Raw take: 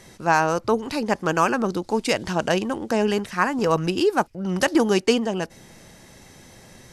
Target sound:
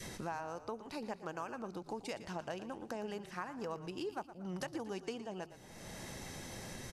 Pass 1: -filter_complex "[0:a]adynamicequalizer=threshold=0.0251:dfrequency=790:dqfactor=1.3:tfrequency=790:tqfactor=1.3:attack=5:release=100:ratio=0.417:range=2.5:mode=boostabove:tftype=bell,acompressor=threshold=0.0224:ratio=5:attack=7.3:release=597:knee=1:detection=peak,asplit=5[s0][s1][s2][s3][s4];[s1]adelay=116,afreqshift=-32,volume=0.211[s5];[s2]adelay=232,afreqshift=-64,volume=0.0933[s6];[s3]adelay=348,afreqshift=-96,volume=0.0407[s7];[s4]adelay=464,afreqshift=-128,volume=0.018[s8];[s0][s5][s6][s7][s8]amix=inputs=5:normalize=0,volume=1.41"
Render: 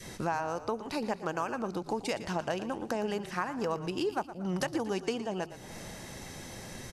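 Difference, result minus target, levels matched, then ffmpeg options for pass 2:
compression: peak gain reduction -9 dB
-filter_complex "[0:a]adynamicequalizer=threshold=0.0251:dfrequency=790:dqfactor=1.3:tfrequency=790:tqfactor=1.3:attack=5:release=100:ratio=0.417:range=2.5:mode=boostabove:tftype=bell,acompressor=threshold=0.00596:ratio=5:attack=7.3:release=597:knee=1:detection=peak,asplit=5[s0][s1][s2][s3][s4];[s1]adelay=116,afreqshift=-32,volume=0.211[s5];[s2]adelay=232,afreqshift=-64,volume=0.0933[s6];[s3]adelay=348,afreqshift=-96,volume=0.0407[s7];[s4]adelay=464,afreqshift=-128,volume=0.018[s8];[s0][s5][s6][s7][s8]amix=inputs=5:normalize=0,volume=1.41"

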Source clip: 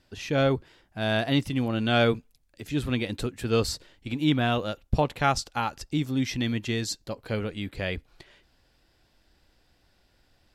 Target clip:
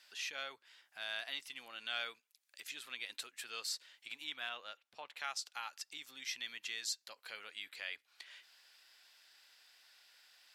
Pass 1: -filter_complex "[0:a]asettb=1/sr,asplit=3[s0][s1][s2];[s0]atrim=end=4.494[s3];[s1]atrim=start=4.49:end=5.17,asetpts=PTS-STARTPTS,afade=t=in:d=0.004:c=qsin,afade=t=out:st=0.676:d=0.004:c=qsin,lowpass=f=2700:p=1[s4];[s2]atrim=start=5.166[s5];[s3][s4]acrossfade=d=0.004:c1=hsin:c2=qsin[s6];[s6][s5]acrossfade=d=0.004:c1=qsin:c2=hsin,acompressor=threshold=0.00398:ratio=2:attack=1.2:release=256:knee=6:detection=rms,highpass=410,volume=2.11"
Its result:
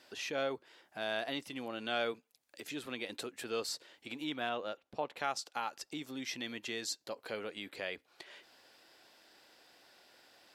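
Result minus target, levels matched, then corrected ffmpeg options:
500 Hz band +13.5 dB
-filter_complex "[0:a]asettb=1/sr,asplit=3[s0][s1][s2];[s0]atrim=end=4.494[s3];[s1]atrim=start=4.49:end=5.17,asetpts=PTS-STARTPTS,afade=t=in:d=0.004:c=qsin,afade=t=out:st=0.676:d=0.004:c=qsin,lowpass=f=2700:p=1[s4];[s2]atrim=start=5.166[s5];[s3][s4]acrossfade=d=0.004:c1=hsin:c2=qsin[s6];[s6][s5]acrossfade=d=0.004:c1=qsin:c2=hsin,acompressor=threshold=0.00398:ratio=2:attack=1.2:release=256:knee=6:detection=rms,highpass=1600,volume=2.11"

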